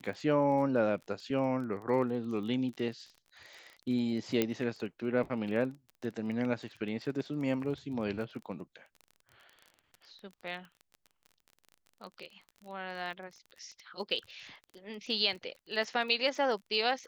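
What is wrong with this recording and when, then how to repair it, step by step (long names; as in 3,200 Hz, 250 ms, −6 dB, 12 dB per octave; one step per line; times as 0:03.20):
surface crackle 25 per second −41 dBFS
0:04.42: click −14 dBFS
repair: click removal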